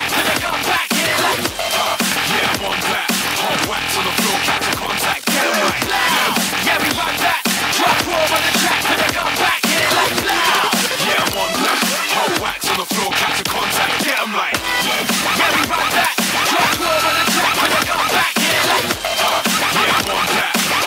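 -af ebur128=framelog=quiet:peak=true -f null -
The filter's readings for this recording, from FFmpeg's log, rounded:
Integrated loudness:
  I:         -15.2 LUFS
  Threshold: -25.2 LUFS
Loudness range:
  LRA:         2.0 LU
  Threshold: -35.2 LUFS
  LRA low:   -16.3 LUFS
  LRA high:  -14.2 LUFS
True peak:
  Peak:       -1.4 dBFS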